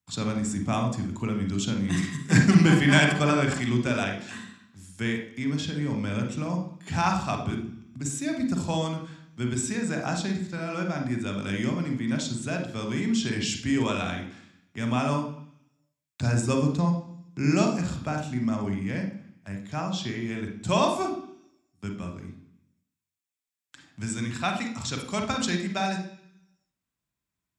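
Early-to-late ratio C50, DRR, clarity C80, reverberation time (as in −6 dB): 6.0 dB, 3.5 dB, 12.0 dB, 0.65 s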